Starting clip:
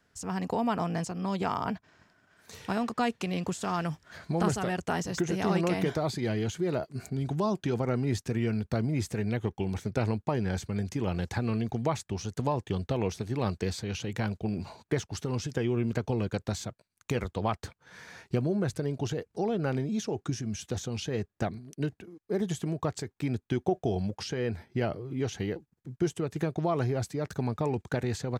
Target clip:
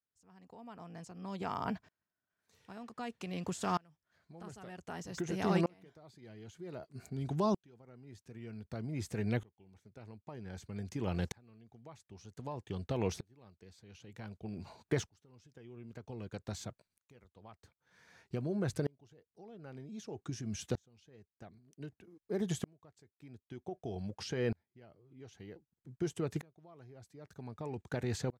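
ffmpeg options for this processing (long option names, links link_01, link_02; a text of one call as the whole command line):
ffmpeg -i in.wav -af "aeval=exprs='val(0)*pow(10,-33*if(lt(mod(-0.53*n/s,1),2*abs(-0.53)/1000),1-mod(-0.53*n/s,1)/(2*abs(-0.53)/1000),(mod(-0.53*n/s,1)-2*abs(-0.53)/1000)/(1-2*abs(-0.53)/1000))/20)':channel_layout=same,volume=-1dB" out.wav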